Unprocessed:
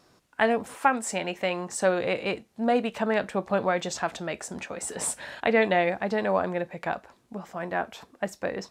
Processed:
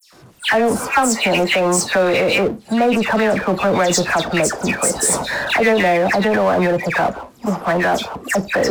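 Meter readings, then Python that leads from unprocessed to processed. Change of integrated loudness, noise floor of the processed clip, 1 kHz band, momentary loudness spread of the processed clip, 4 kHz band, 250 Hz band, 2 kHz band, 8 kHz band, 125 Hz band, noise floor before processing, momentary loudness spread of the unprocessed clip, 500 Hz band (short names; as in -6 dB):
+11.0 dB, -46 dBFS, +9.5 dB, 5 LU, +15.0 dB, +11.5 dB, +12.0 dB, +14.5 dB, +13.5 dB, -63 dBFS, 11 LU, +10.0 dB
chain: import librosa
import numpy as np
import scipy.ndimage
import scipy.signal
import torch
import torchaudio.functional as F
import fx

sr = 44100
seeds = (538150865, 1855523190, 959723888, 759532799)

p1 = fx.dispersion(x, sr, late='lows', ms=131.0, hz=2600.0)
p2 = fx.noise_reduce_blind(p1, sr, reduce_db=15)
p3 = fx.power_curve(p2, sr, exponent=0.7)
p4 = fx.over_compress(p3, sr, threshold_db=-25.0, ratio=-0.5)
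p5 = p3 + (p4 * 10.0 ** (-2.0 / 20.0))
y = p5 * 10.0 ** (3.5 / 20.0)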